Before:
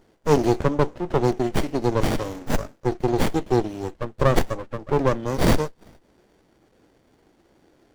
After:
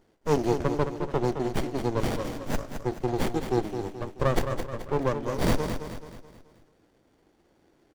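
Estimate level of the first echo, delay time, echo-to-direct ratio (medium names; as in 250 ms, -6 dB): -8.0 dB, 215 ms, -7.0 dB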